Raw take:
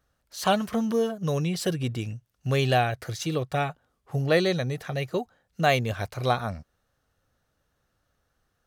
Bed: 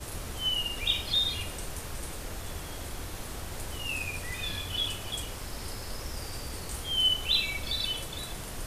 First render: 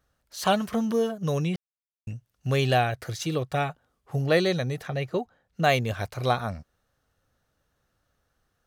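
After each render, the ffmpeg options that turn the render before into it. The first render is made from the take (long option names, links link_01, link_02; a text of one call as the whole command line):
ffmpeg -i in.wav -filter_complex "[0:a]asettb=1/sr,asplit=3[link_01][link_02][link_03];[link_01]atrim=end=4.874[link_04];[link_02]atrim=start=4.87:end=5.64,asetpts=PTS-STARTPTS,afade=type=in:duration=0.004:curve=qsin,afade=type=out:start_time=0.766:duration=0.004:curve=qsin,aemphasis=mode=reproduction:type=cd[link_05];[link_03]atrim=start=5.636[link_06];[link_04][link_05]acrossfade=duration=0.004:curve1=hsin:curve2=qsin[link_07];[link_07][link_06]acrossfade=duration=0.004:curve1=qsin:curve2=hsin,asplit=3[link_08][link_09][link_10];[link_08]atrim=end=1.56,asetpts=PTS-STARTPTS,afade=type=out:start_time=1.556:duration=0.004:curve=hsin[link_11];[link_09]atrim=start=1.56:end=2.07,asetpts=PTS-STARTPTS,volume=0[link_12];[link_10]atrim=start=2.07,asetpts=PTS-STARTPTS,afade=type=in:duration=0.004:curve=hsin[link_13];[link_11][link_12][link_13]concat=n=3:v=0:a=1" out.wav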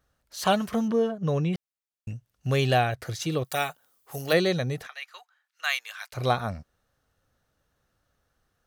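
ffmpeg -i in.wav -filter_complex "[0:a]asettb=1/sr,asplit=3[link_01][link_02][link_03];[link_01]atrim=end=0.884[link_04];[link_02]atrim=start=0.88:end=1.53,asetpts=PTS-STARTPTS,afade=type=in:duration=0.004:curve=qsin,afade=type=out:start_time=0.646:duration=0.004:curve=qsin,aemphasis=mode=reproduction:type=75fm[link_05];[link_03]atrim=start=1.526[link_06];[link_04][link_05]acrossfade=duration=0.004:curve1=hsin:curve2=qsin[link_07];[link_07][link_06]acrossfade=duration=0.004:curve1=qsin:curve2=hsin,asplit=3[link_08][link_09][link_10];[link_08]afade=type=out:start_time=3.43:duration=0.02[link_11];[link_09]aemphasis=mode=production:type=riaa,afade=type=in:start_time=3.43:duration=0.02,afade=type=out:start_time=4.32:duration=0.02[link_12];[link_10]afade=type=in:start_time=4.32:duration=0.02[link_13];[link_11][link_12][link_13]amix=inputs=3:normalize=0,asplit=3[link_14][link_15][link_16];[link_14]afade=type=out:start_time=4.86:duration=0.02[link_17];[link_15]highpass=frequency=1200:width=0.5412,highpass=frequency=1200:width=1.3066,afade=type=in:start_time=4.86:duration=0.02,afade=type=out:start_time=6.12:duration=0.02[link_18];[link_16]afade=type=in:start_time=6.12:duration=0.02[link_19];[link_17][link_18][link_19]amix=inputs=3:normalize=0" out.wav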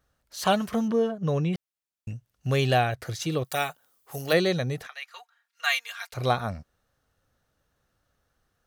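ffmpeg -i in.wav -filter_complex "[0:a]asettb=1/sr,asplit=3[link_01][link_02][link_03];[link_01]atrim=end=5.104[link_04];[link_02]atrim=start=5.1:end=6.14,asetpts=PTS-STARTPTS,afade=type=in:duration=0.004:curve=qsin,afade=type=out:start_time=1.036:duration=0.004:curve=qsin,aecho=1:1:4.3:0.79,atrim=end_sample=45864[link_05];[link_03]atrim=start=6.136[link_06];[link_04][link_05]acrossfade=duration=0.004:curve1=hsin:curve2=qsin[link_07];[link_07][link_06]acrossfade=duration=0.004:curve1=qsin:curve2=hsin" out.wav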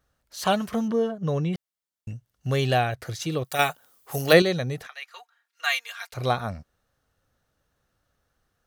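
ffmpeg -i in.wav -filter_complex "[0:a]asettb=1/sr,asplit=3[link_01][link_02][link_03];[link_01]atrim=end=0.884[link_04];[link_02]atrim=start=0.88:end=2.64,asetpts=PTS-STARTPTS,afade=type=in:duration=0.004:curve=qsin,afade=type=out:start_time=1.756:duration=0.004:curve=qsin,bandreject=frequency=2500:width=12[link_05];[link_03]atrim=start=2.636[link_06];[link_04][link_05]acrossfade=duration=0.004:curve1=hsin:curve2=qsin[link_07];[link_07][link_06]acrossfade=duration=0.004:curve1=qsin:curve2=hsin,asettb=1/sr,asplit=3[link_08][link_09][link_10];[link_08]atrim=end=4.974[link_11];[link_09]atrim=start=4.97:end=6.11,asetpts=PTS-STARTPTS,afade=type=in:duration=0.004:curve=qsin,afade=type=out:start_time=1.136:duration=0.004:curve=qsin,lowshelf=frequency=210:width_type=q:width=3:gain=-11[link_12];[link_10]atrim=start=6.106[link_13];[link_11][link_12]acrossfade=duration=0.004:curve1=hsin:curve2=qsin[link_14];[link_14][link_13]acrossfade=duration=0.004:curve1=qsin:curve2=hsin,asplit=3[link_15][link_16][link_17];[link_15]atrim=end=3.592[link_18];[link_16]atrim=start=3.588:end=4.422,asetpts=PTS-STARTPTS,volume=6.5dB[link_19];[link_17]atrim=start=4.418[link_20];[link_18][link_19]acrossfade=duration=0.004:curve1=hsin:curve2=hsin[link_21];[link_21][link_20]acrossfade=duration=0.004:curve1=hsin:curve2=hsin" out.wav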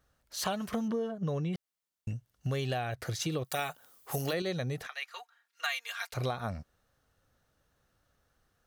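ffmpeg -i in.wav -af "alimiter=limit=-13dB:level=0:latency=1:release=131,acompressor=threshold=-30dB:ratio=6" out.wav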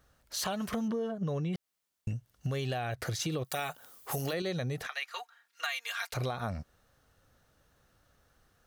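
ffmpeg -i in.wav -filter_complex "[0:a]asplit=2[link_01][link_02];[link_02]alimiter=level_in=4dB:limit=-24dB:level=0:latency=1,volume=-4dB,volume=-1dB[link_03];[link_01][link_03]amix=inputs=2:normalize=0,acompressor=threshold=-34dB:ratio=2" out.wav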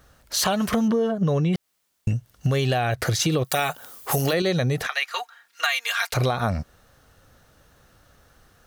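ffmpeg -i in.wav -af "volume=11.5dB" out.wav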